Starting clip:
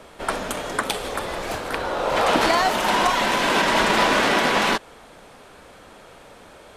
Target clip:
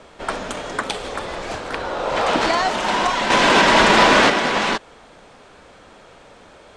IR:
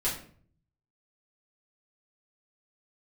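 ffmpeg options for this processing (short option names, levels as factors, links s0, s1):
-filter_complex "[0:a]lowpass=f=8200:w=0.5412,lowpass=f=8200:w=1.3066,asettb=1/sr,asplit=3[s0][s1][s2];[s0]atrim=end=3.304[s3];[s1]atrim=start=3.3:end=4.3,asetpts=PTS-STARTPTS,afade=t=in:d=0.004:c=qsin,afade=t=out:st=0.996:d=0.004:c=qsin,acontrast=70[s4];[s2]atrim=start=4.296[s5];[s3][s4]acrossfade=d=0.004:c1=hsin:c2=qsin[s6];[s6][s5]acrossfade=d=0.004:c1=qsin:c2=hsin"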